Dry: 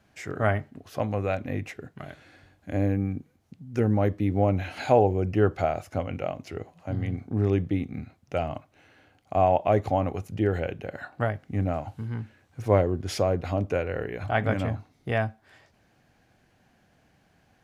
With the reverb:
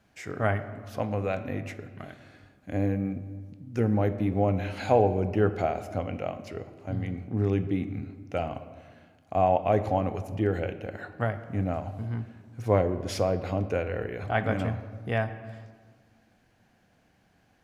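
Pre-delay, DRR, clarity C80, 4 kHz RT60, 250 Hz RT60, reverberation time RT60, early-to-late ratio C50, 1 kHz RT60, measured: 4 ms, 10.5 dB, 13.5 dB, 0.90 s, 2.2 s, 1.5 s, 12.5 dB, 1.5 s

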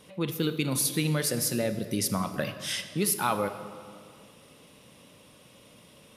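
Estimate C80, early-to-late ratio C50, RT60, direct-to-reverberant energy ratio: 11.0 dB, 9.5 dB, 2.2 s, 9.0 dB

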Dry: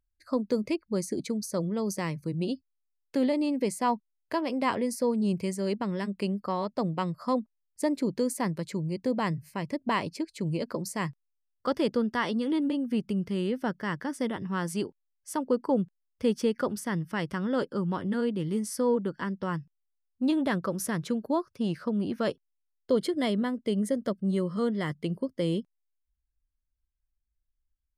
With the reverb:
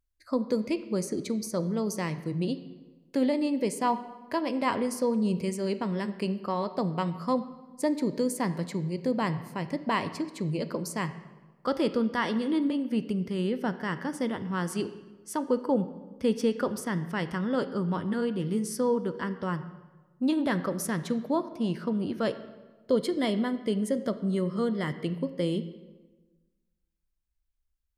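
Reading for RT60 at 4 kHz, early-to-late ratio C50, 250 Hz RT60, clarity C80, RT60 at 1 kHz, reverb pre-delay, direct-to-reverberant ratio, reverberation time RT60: 0.90 s, 13.0 dB, 1.5 s, 14.5 dB, 1.2 s, 16 ms, 11.0 dB, 1.3 s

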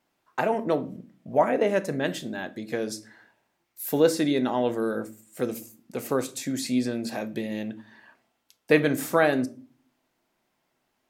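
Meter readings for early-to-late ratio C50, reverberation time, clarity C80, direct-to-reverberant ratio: 20.0 dB, 0.40 s, 25.5 dB, 11.5 dB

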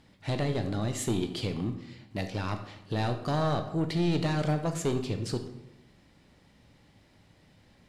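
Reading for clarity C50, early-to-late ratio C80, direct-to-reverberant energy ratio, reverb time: 9.5 dB, 11.5 dB, 6.0 dB, 0.90 s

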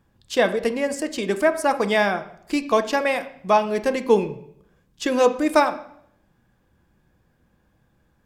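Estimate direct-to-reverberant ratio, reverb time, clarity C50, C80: 9.0 dB, 0.70 s, 13.5 dB, 16.5 dB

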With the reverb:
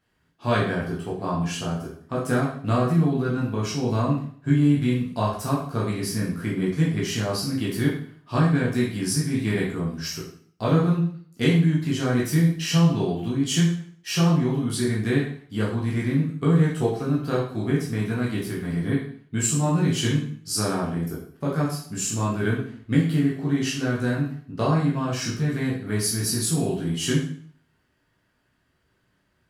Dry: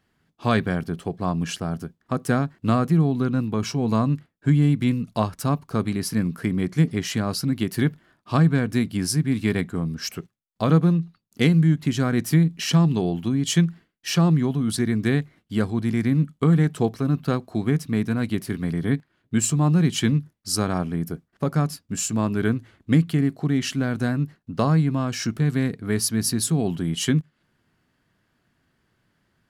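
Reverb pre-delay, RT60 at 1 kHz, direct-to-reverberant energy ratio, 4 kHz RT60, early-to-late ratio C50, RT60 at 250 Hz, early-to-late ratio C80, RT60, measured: 6 ms, 0.55 s, −6.0 dB, 0.50 s, 4.5 dB, 0.55 s, 8.5 dB, 0.55 s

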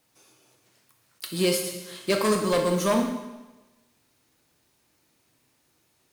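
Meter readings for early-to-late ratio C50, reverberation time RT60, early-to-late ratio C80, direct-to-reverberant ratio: 5.5 dB, 1.1 s, 7.5 dB, 2.5 dB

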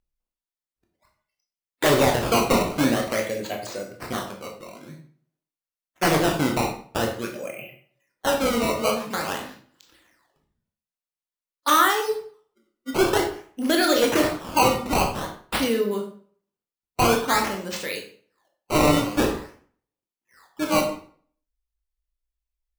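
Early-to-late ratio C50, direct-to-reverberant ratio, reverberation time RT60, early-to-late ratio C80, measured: 7.0 dB, 1.5 dB, 0.50 s, 11.0 dB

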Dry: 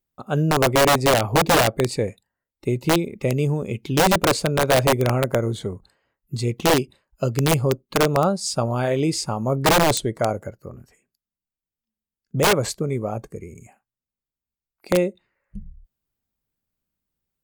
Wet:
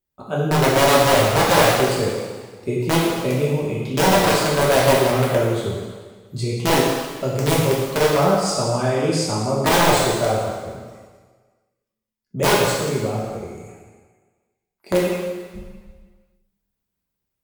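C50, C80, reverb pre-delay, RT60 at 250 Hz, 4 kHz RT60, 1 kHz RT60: 0.5 dB, 2.5 dB, 3 ms, 1.4 s, 1.5 s, 1.5 s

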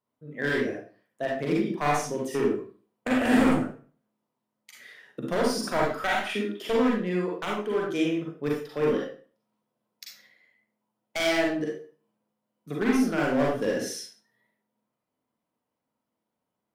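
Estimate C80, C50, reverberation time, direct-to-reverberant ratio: 7.0 dB, 1.5 dB, 0.40 s, −3.0 dB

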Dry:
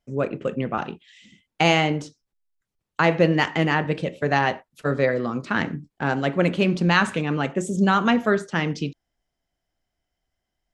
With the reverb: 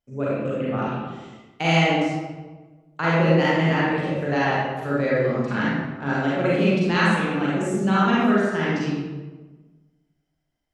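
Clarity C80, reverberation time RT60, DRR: 0.5 dB, 1.3 s, −8.0 dB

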